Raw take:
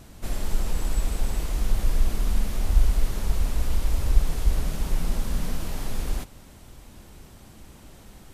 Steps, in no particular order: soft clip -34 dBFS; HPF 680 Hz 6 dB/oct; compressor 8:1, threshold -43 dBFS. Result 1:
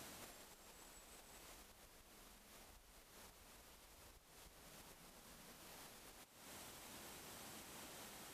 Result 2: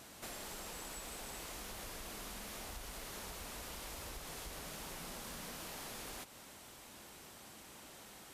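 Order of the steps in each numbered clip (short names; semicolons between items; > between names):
compressor > HPF > soft clip; HPF > compressor > soft clip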